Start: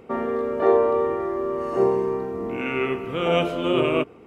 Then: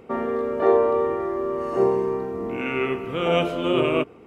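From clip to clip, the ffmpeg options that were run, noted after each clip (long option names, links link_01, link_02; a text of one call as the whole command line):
ffmpeg -i in.wav -af anull out.wav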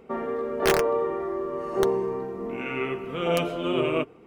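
ffmpeg -i in.wav -af "aeval=exprs='(mod(2.82*val(0)+1,2)-1)/2.82':channel_layout=same,flanger=delay=4.4:depth=2.5:regen=-48:speed=1.6:shape=triangular" out.wav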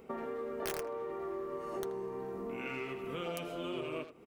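ffmpeg -i in.wav -filter_complex "[0:a]acompressor=threshold=-33dB:ratio=6,highshelf=frequency=6800:gain=11.5,asplit=2[link_01][link_02];[link_02]adelay=80,highpass=300,lowpass=3400,asoftclip=type=hard:threshold=-36dB,volume=-8dB[link_03];[link_01][link_03]amix=inputs=2:normalize=0,volume=-4dB" out.wav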